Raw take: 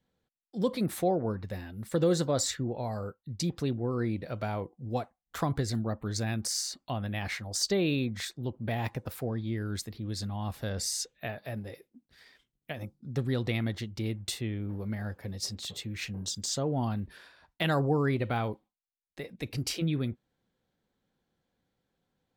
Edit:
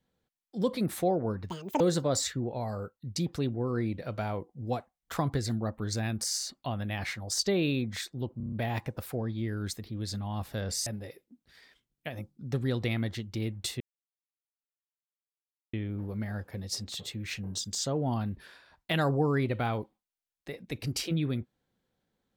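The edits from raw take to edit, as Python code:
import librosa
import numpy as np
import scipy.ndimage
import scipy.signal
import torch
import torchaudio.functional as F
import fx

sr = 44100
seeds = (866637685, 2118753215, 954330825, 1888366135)

y = fx.edit(x, sr, fx.speed_span(start_s=1.5, length_s=0.54, speed=1.78),
    fx.stutter(start_s=8.61, slice_s=0.03, count=6),
    fx.cut(start_s=10.95, length_s=0.55),
    fx.insert_silence(at_s=14.44, length_s=1.93), tone=tone)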